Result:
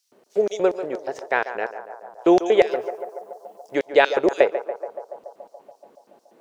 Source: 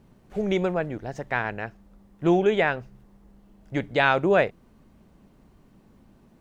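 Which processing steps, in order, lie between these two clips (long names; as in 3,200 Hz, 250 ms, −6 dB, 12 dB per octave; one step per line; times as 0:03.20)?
0:02.71–0:03.75: high-shelf EQ 5,800 Hz +10.5 dB
auto-filter high-pass square 4.2 Hz 440–5,400 Hz
feedback echo with a band-pass in the loop 142 ms, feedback 79%, band-pass 760 Hz, level −10 dB
level +3 dB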